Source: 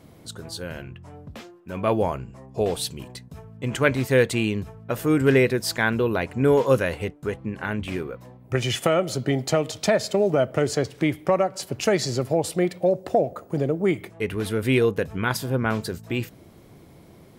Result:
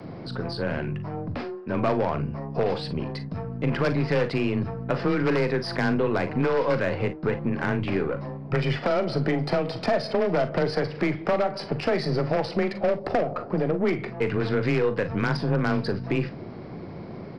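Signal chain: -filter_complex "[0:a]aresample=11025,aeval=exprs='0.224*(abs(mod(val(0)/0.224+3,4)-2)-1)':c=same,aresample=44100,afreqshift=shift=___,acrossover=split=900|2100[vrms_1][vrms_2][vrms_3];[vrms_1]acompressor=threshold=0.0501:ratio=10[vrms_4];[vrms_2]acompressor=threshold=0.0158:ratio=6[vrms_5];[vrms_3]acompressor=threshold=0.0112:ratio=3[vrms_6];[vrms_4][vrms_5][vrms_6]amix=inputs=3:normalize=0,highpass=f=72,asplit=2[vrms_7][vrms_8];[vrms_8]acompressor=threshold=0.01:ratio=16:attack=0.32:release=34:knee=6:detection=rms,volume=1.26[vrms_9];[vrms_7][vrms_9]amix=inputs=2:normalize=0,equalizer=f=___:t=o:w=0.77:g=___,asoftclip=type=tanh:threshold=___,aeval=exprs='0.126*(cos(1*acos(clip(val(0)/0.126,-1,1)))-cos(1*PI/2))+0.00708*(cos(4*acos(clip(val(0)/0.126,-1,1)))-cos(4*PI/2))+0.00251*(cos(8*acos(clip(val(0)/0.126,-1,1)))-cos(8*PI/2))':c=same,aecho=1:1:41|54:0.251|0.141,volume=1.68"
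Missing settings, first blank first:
19, 3400, -11.5, 0.133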